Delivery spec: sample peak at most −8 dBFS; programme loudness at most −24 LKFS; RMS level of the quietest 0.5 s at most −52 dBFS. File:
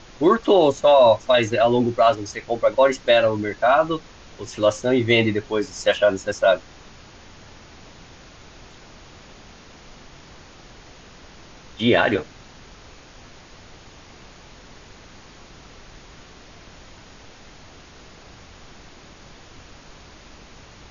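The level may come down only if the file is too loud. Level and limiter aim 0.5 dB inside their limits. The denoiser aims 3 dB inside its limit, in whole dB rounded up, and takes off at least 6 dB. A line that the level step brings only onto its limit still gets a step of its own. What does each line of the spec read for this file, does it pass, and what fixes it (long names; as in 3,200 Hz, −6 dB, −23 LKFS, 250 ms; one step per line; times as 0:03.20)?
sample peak −5.5 dBFS: out of spec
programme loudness −19.0 LKFS: out of spec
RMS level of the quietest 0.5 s −45 dBFS: out of spec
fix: broadband denoise 6 dB, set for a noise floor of −45 dBFS
level −5.5 dB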